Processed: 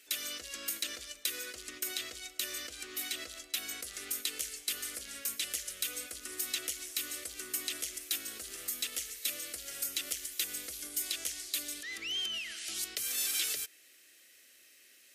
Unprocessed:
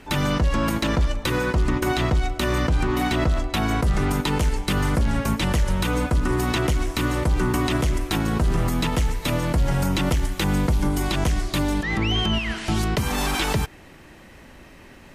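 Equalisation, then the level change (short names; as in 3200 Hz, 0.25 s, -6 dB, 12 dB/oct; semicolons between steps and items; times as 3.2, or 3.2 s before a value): differentiator; fixed phaser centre 380 Hz, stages 4; 0.0 dB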